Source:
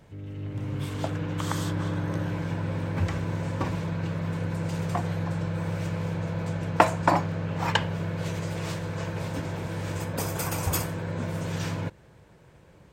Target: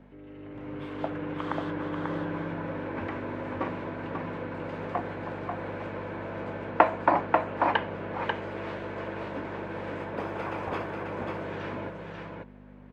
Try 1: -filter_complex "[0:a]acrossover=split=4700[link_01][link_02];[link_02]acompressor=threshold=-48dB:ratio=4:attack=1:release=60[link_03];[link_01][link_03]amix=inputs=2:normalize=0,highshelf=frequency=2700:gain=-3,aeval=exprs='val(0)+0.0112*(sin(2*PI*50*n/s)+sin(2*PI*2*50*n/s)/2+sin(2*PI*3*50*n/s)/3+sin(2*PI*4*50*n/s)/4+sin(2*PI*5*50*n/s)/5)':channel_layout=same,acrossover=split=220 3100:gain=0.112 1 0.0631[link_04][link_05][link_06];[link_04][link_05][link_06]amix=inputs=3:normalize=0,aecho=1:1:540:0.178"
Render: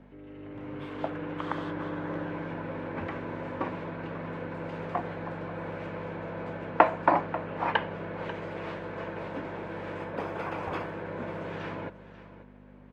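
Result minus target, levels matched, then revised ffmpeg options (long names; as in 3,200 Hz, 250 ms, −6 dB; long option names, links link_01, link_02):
echo-to-direct −11 dB
-filter_complex "[0:a]acrossover=split=4700[link_01][link_02];[link_02]acompressor=threshold=-48dB:ratio=4:attack=1:release=60[link_03];[link_01][link_03]amix=inputs=2:normalize=0,highshelf=frequency=2700:gain=-3,aeval=exprs='val(0)+0.0112*(sin(2*PI*50*n/s)+sin(2*PI*2*50*n/s)/2+sin(2*PI*3*50*n/s)/3+sin(2*PI*4*50*n/s)/4+sin(2*PI*5*50*n/s)/5)':channel_layout=same,acrossover=split=220 3100:gain=0.112 1 0.0631[link_04][link_05][link_06];[link_04][link_05][link_06]amix=inputs=3:normalize=0,aecho=1:1:540:0.631"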